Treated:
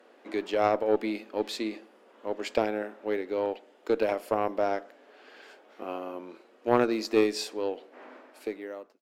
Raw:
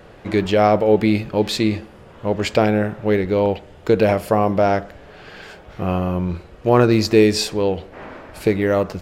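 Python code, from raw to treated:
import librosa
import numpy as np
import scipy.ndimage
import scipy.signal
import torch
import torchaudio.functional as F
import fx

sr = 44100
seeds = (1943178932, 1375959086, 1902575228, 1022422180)

y = fx.fade_out_tail(x, sr, length_s=0.87)
y = scipy.signal.sosfilt(scipy.signal.ellip(4, 1.0, 40, 240.0, 'highpass', fs=sr, output='sos'), y)
y = fx.cheby_harmonics(y, sr, harmonics=(3, 4, 6), levels_db=(-16, -26, -36), full_scale_db=-1.0)
y = y * 10.0 ** (-6.0 / 20.0)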